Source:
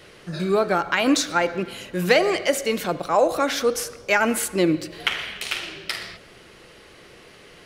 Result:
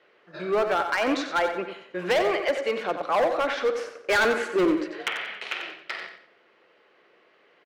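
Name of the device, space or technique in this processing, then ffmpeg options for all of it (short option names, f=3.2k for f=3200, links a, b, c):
walkie-talkie: -filter_complex "[0:a]asplit=3[a][b][c];[a]afade=t=out:st=3.94:d=0.02[d];[b]equalizer=f=400:t=o:w=0.67:g=9,equalizer=f=1.6k:t=o:w=0.67:g=6,equalizer=f=6.3k:t=o:w=0.67:g=5,afade=t=in:st=3.94:d=0.02,afade=t=out:st=5.01:d=0.02[e];[c]afade=t=in:st=5.01:d=0.02[f];[d][e][f]amix=inputs=3:normalize=0,highpass=410,lowpass=2.3k,asoftclip=type=hard:threshold=-18.5dB,agate=range=-10dB:threshold=-39dB:ratio=16:detection=peak,aecho=1:1:91|182|273:0.355|0.103|0.0298"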